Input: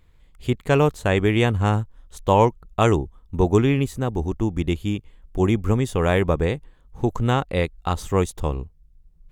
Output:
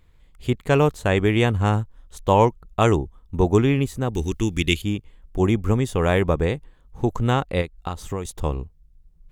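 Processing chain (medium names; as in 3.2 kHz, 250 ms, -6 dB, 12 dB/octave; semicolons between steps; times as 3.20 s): 4.14–4.82 s: FFT filter 450 Hz 0 dB, 660 Hz -11 dB, 2.5 kHz +13 dB; 7.61–8.25 s: compression 6:1, threshold -25 dBFS, peak gain reduction 11 dB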